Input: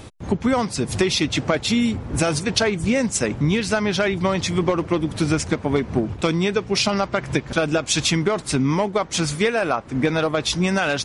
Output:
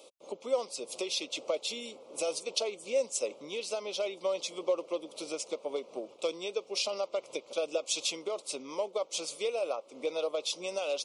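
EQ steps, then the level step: ladder high-pass 500 Hz, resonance 70%; Butterworth band-stop 1.7 kHz, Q 1.3; peaking EQ 750 Hz -11 dB 1.4 oct; +1.5 dB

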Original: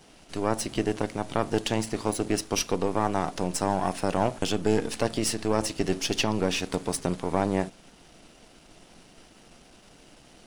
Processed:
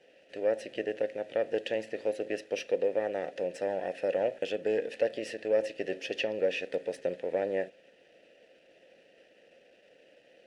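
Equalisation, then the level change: vowel filter e; +6.5 dB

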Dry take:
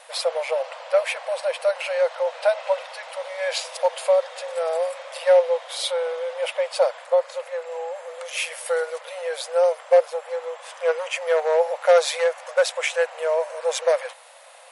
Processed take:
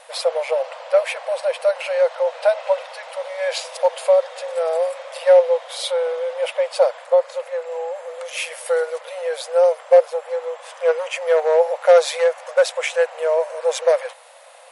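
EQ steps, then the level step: bass shelf 440 Hz +9.5 dB; 0.0 dB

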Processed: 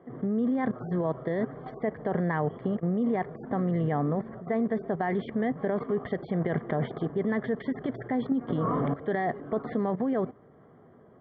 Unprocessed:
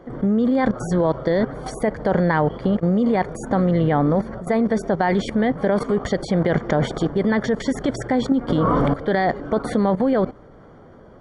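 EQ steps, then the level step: distance through air 290 m; cabinet simulation 160–3000 Hz, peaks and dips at 200 Hz -5 dB, 310 Hz -7 dB, 540 Hz -9 dB, 890 Hz -8 dB, 1.4 kHz -7 dB, 2.5 kHz -10 dB; band-stop 1.5 kHz, Q 22; -3.0 dB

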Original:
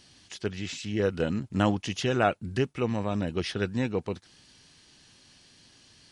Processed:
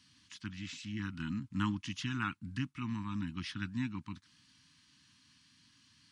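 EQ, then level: high-pass 86 Hz; elliptic band-stop 290–990 Hz, stop band 40 dB; treble shelf 5.5 kHz -6.5 dB; -6.0 dB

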